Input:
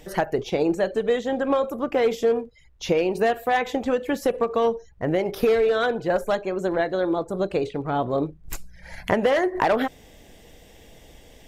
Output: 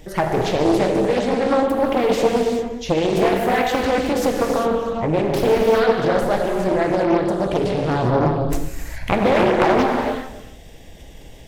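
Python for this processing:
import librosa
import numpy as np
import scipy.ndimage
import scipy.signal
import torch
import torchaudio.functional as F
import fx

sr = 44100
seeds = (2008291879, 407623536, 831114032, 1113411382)

p1 = fx.transient(x, sr, attack_db=1, sustain_db=8)
p2 = fx.low_shelf(p1, sr, hz=210.0, db=6.5)
p3 = p2 + fx.echo_single(p2, sr, ms=270, db=-17.5, dry=0)
p4 = fx.rev_gated(p3, sr, seeds[0], gate_ms=430, shape='flat', drr_db=0.0)
p5 = fx.rider(p4, sr, range_db=10, speed_s=2.0)
p6 = p4 + F.gain(torch.from_numpy(p5), -1.0).numpy()
p7 = fx.doppler_dist(p6, sr, depth_ms=0.8)
y = F.gain(torch.from_numpy(p7), -6.0).numpy()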